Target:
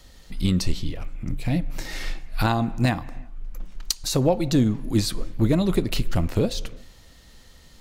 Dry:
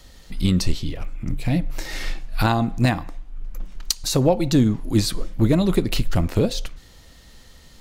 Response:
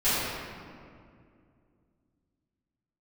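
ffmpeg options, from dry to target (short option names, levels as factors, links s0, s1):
-filter_complex "[0:a]asplit=2[s0][s1];[s1]highshelf=f=3400:t=q:w=1.5:g=-12[s2];[1:a]atrim=start_sample=2205,afade=t=out:st=0.26:d=0.01,atrim=end_sample=11907,adelay=146[s3];[s2][s3]afir=irnorm=-1:irlink=0,volume=0.015[s4];[s0][s4]amix=inputs=2:normalize=0,volume=0.75"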